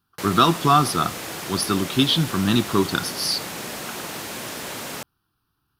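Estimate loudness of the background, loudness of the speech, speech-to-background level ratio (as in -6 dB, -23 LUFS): -31.0 LUFS, -21.0 LUFS, 10.0 dB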